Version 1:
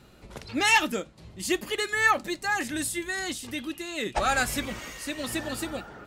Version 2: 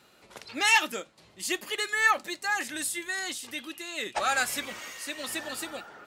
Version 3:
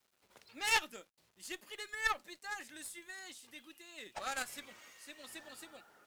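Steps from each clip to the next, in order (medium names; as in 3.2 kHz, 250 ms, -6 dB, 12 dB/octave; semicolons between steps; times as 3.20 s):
high-pass 730 Hz 6 dB/octave
bit crusher 9-bit; Chebyshev shaper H 2 -9 dB, 3 -21 dB, 7 -26 dB, 8 -45 dB, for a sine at -8 dBFS; trim -8 dB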